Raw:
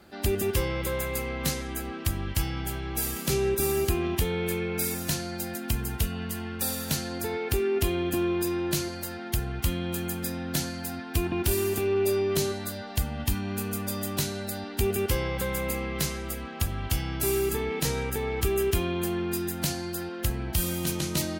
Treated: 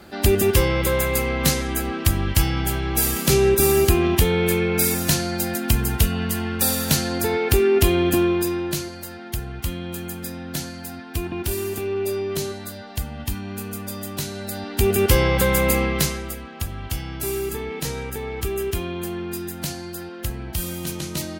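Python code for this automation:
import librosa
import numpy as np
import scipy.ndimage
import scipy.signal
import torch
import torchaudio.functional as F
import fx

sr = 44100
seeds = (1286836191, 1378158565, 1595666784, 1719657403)

y = fx.gain(x, sr, db=fx.line((8.12, 9.0), (8.9, 0.0), (14.2, 0.0), (15.2, 11.0), (15.82, 11.0), (16.45, 0.0)))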